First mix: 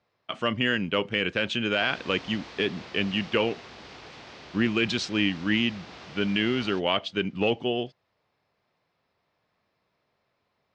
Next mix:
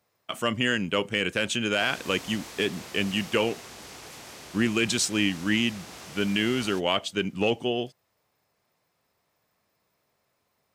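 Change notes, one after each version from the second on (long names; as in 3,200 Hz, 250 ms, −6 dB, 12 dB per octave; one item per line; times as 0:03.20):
master: remove low-pass filter 4,600 Hz 24 dB per octave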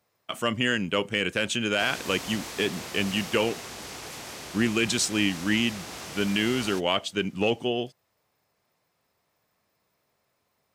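background +4.5 dB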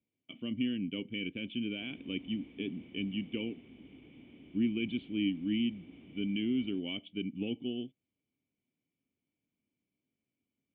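background: add high-frequency loss of the air 320 metres
master: add formant resonators in series i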